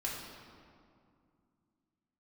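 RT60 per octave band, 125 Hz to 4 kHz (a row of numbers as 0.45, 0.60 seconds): 3.1, 3.2, 2.4, 2.3, 1.7, 1.3 seconds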